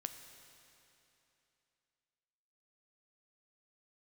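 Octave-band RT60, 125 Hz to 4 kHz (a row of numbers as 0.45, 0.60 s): 3.0, 3.0, 3.0, 3.0, 2.9, 2.8 s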